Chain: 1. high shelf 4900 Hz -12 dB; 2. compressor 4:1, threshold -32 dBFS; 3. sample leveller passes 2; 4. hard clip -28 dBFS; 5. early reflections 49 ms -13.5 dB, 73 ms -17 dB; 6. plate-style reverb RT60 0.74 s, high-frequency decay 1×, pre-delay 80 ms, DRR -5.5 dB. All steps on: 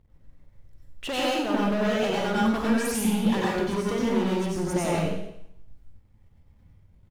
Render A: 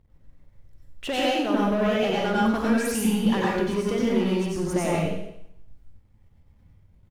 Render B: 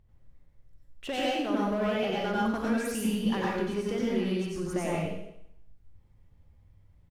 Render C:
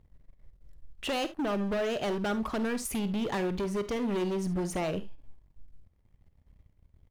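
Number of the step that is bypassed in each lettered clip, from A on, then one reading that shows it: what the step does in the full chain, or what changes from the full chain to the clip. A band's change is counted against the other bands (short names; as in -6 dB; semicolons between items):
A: 4, distortion -15 dB; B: 3, 8 kHz band -3.0 dB; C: 6, momentary loudness spread change -3 LU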